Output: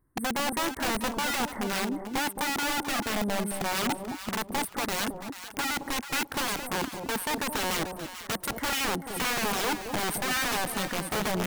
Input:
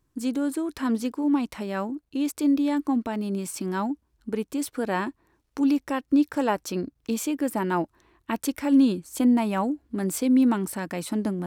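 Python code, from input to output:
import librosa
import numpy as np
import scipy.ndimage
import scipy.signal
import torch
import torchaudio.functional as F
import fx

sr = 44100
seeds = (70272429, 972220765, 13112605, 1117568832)

y = fx.brickwall_bandstop(x, sr, low_hz=2200.0, high_hz=8100.0)
y = (np.mod(10.0 ** (24.0 / 20.0) * y + 1.0, 2.0) - 1.0) / 10.0 ** (24.0 / 20.0)
y = fx.echo_alternate(y, sr, ms=219, hz=850.0, feedback_pct=50, wet_db=-5)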